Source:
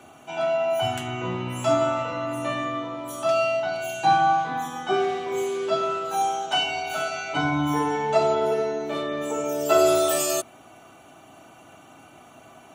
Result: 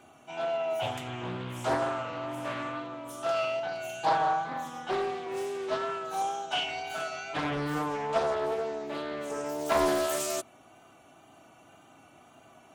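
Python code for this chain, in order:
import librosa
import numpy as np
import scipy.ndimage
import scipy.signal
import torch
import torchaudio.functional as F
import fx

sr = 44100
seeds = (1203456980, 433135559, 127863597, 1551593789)

y = fx.wow_flutter(x, sr, seeds[0], rate_hz=2.1, depth_cents=28.0)
y = fx.doppler_dist(y, sr, depth_ms=0.63)
y = F.gain(torch.from_numpy(y), -7.0).numpy()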